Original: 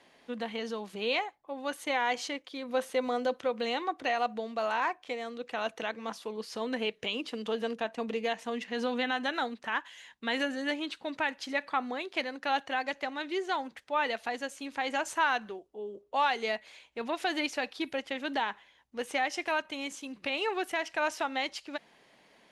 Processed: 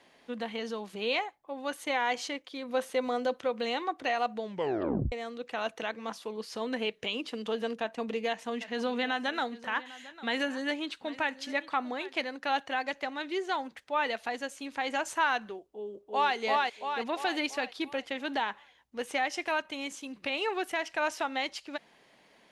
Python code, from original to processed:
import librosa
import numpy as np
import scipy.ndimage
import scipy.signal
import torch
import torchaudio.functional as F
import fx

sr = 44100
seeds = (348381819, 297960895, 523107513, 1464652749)

y = fx.echo_single(x, sr, ms=800, db=-17.5, at=(8.51, 12.18), fade=0.02)
y = fx.echo_throw(y, sr, start_s=15.73, length_s=0.62, ms=340, feedback_pct=50, wet_db=-1.0)
y = fx.edit(y, sr, fx.tape_stop(start_s=4.43, length_s=0.69), tone=tone)